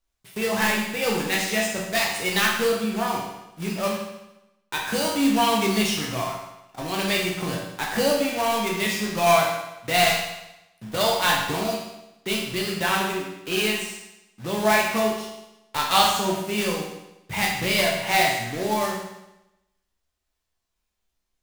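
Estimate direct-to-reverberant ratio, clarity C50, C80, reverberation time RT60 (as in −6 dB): −2.5 dB, 2.5 dB, 5.5 dB, 0.90 s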